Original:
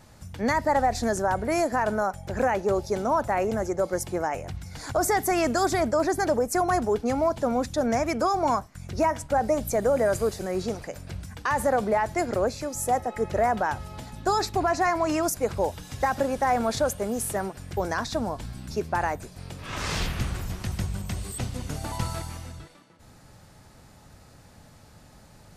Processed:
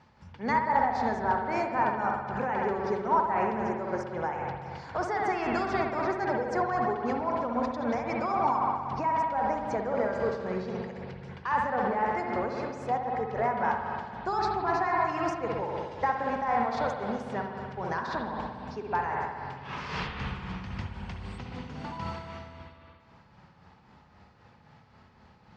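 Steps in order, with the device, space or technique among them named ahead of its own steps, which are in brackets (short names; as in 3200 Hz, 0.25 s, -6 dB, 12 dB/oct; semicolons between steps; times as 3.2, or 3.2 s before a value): combo amplifier with spring reverb and tremolo (spring tank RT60 2.1 s, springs 59 ms, chirp 25 ms, DRR -0.5 dB; tremolo 3.8 Hz, depth 44%; speaker cabinet 77–4500 Hz, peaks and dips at 110 Hz -7 dB, 310 Hz -6 dB, 610 Hz -7 dB, 940 Hz +6 dB, 3800 Hz -5 dB); gain -4 dB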